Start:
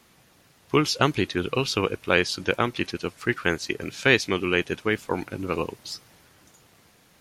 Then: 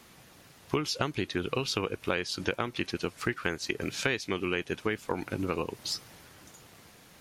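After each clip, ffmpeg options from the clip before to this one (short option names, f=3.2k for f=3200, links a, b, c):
-af "acompressor=threshold=-30dB:ratio=6,volume=3dB"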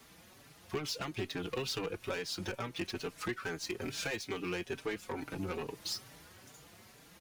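-filter_complex "[0:a]acrossover=split=370|3400[a][b][c];[c]acrusher=bits=2:mode=log:mix=0:aa=0.000001[d];[a][b][d]amix=inputs=3:normalize=0,asoftclip=type=tanh:threshold=-26.5dB,asplit=2[e][f];[f]adelay=4.7,afreqshift=2.3[g];[e][g]amix=inputs=2:normalize=1"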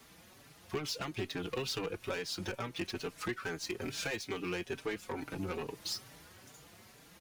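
-af anull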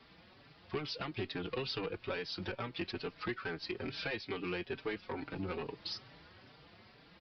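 -af "aresample=11025,aresample=44100,volume=-1dB"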